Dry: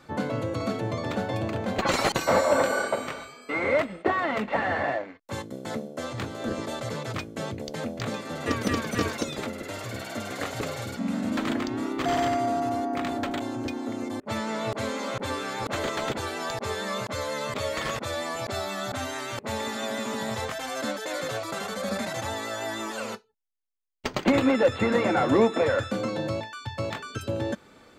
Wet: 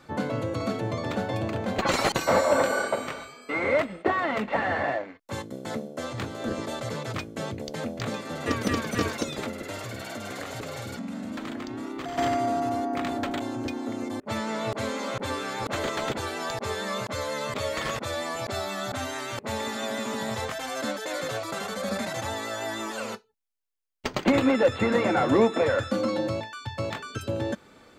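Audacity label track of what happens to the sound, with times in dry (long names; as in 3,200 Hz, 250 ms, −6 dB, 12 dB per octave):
9.820000	12.180000	downward compressor, threshold −31 dBFS
25.870000	26.280000	comb filter 3.6 ms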